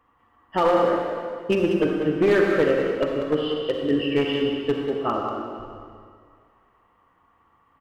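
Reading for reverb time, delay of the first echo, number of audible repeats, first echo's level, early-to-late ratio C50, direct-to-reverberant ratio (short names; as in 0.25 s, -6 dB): 2.1 s, 0.19 s, 1, -8.5 dB, 0.5 dB, 0.0 dB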